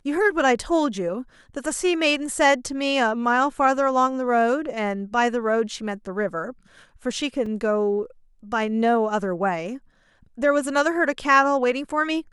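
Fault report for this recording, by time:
7.46 gap 3.5 ms

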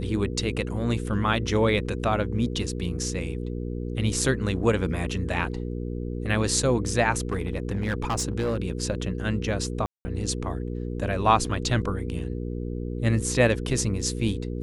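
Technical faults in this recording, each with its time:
hum 60 Hz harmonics 8 -31 dBFS
7.32–8.57 clipped -21.5 dBFS
9.86–10.05 gap 0.19 s

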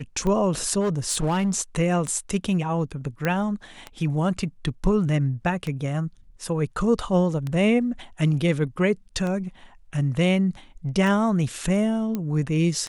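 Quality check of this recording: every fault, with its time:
tick 33 1/3 rpm -17 dBFS
0.8–1.54 clipped -19 dBFS
3.25 pop -11 dBFS
12.15 pop -15 dBFS

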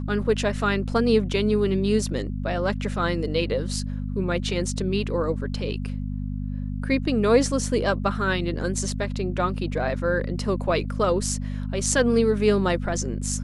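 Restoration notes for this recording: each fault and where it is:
hum 50 Hz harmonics 5 -29 dBFS

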